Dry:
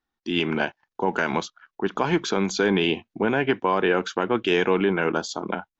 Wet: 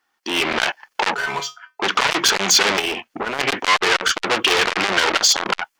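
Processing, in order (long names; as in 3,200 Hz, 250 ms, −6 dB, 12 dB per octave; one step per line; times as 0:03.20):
low-shelf EQ 460 Hz −8.5 dB
notch filter 3,800 Hz, Q 8.1
mid-hump overdrive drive 24 dB, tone 2,300 Hz, clips at −9 dBFS
0:02.79–0:03.39: downward compressor 2 to 1, threshold −35 dBFS, peak gain reduction 10.5 dB
high-shelf EQ 5,300 Hz +10 dB
automatic gain control gain up to 11.5 dB
0:01.14–0:01.82: tuned comb filter 140 Hz, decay 0.2 s, harmonics odd, mix 90%
saturating transformer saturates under 3,300 Hz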